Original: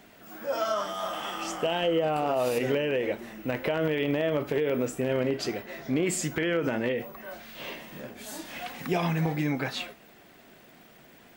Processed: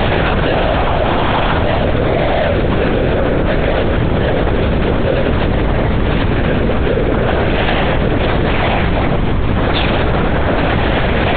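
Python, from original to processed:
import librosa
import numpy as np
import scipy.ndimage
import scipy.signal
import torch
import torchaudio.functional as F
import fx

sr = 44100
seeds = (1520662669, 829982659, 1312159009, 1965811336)

p1 = fx.halfwave_hold(x, sr)
p2 = fx.cheby_harmonics(p1, sr, harmonics=(8,), levels_db=(-12,), full_scale_db=-15.0)
p3 = fx.peak_eq(p2, sr, hz=330.0, db=2.5, octaves=0.77)
p4 = fx.hum_notches(p3, sr, base_hz=60, count=8)
p5 = fx.pitch_keep_formants(p4, sr, semitones=-1.5)
p6 = fx.schmitt(p5, sr, flips_db=-29.0)
p7 = p5 + (p6 * librosa.db_to_amplitude(-10.5))
p8 = fx.rev_plate(p7, sr, seeds[0], rt60_s=2.2, hf_ratio=0.5, predelay_ms=0, drr_db=2.0)
p9 = fx.lpc_vocoder(p8, sr, seeds[1], excitation='whisper', order=8)
p10 = fx.env_flatten(p9, sr, amount_pct=100)
y = p10 * librosa.db_to_amplitude(1.5)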